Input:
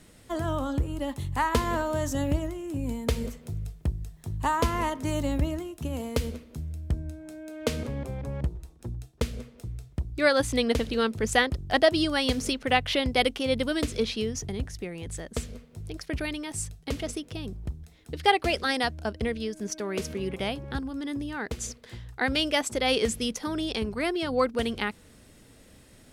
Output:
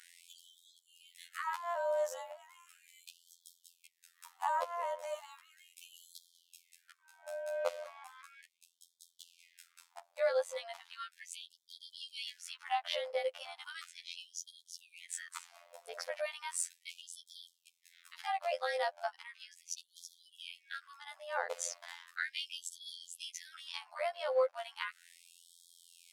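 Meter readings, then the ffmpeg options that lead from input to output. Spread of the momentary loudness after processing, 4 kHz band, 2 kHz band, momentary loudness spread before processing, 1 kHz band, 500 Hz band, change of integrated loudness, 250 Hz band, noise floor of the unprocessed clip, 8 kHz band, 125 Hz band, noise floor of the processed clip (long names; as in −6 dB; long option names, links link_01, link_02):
22 LU, −13.0 dB, −12.5 dB, 13 LU, −9.5 dB, −9.5 dB, −11.0 dB, below −40 dB, −54 dBFS, −7.5 dB, below −40 dB, −76 dBFS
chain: -filter_complex "[0:a]tiltshelf=frequency=940:gain=7.5,acrossover=split=180[link_01][link_02];[link_02]acompressor=threshold=-33dB:ratio=12[link_03];[link_01][link_03]amix=inputs=2:normalize=0,alimiter=limit=-18.5dB:level=0:latency=1:release=445,afftfilt=real='hypot(re,im)*cos(PI*b)':imag='0':win_size=2048:overlap=0.75,asplit=2[link_04][link_05];[link_05]volume=32dB,asoftclip=hard,volume=-32dB,volume=-12dB[link_06];[link_04][link_06]amix=inputs=2:normalize=0,afftfilt=real='re*gte(b*sr/1024,470*pow(3200/470,0.5+0.5*sin(2*PI*0.36*pts/sr)))':imag='im*gte(b*sr/1024,470*pow(3200/470,0.5+0.5*sin(2*PI*0.36*pts/sr)))':win_size=1024:overlap=0.75,volume=8dB"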